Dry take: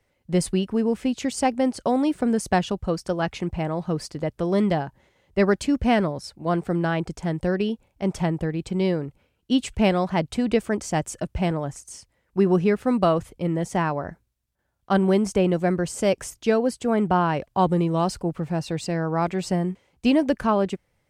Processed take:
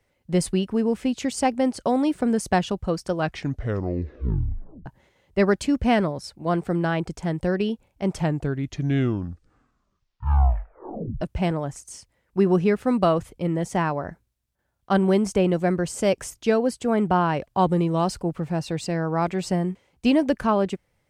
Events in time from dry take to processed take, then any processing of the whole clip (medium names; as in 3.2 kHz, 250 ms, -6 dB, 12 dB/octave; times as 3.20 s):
3.14 s: tape stop 1.72 s
8.10 s: tape stop 3.11 s